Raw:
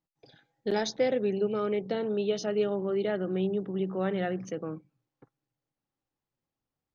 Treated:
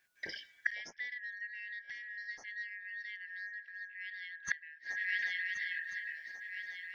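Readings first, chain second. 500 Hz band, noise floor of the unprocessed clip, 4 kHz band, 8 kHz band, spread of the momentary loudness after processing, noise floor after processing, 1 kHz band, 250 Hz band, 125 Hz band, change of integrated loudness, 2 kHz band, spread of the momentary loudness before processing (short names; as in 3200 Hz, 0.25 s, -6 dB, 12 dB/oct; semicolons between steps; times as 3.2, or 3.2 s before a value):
under -35 dB, under -85 dBFS, -5.5 dB, n/a, 9 LU, -65 dBFS, -25.5 dB, under -35 dB, under -30 dB, -9.5 dB, +8.5 dB, 8 LU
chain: four-band scrambler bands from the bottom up 4123; swung echo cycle 1.442 s, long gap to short 3:1, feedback 37%, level -22 dB; flipped gate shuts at -30 dBFS, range -30 dB; gain +14 dB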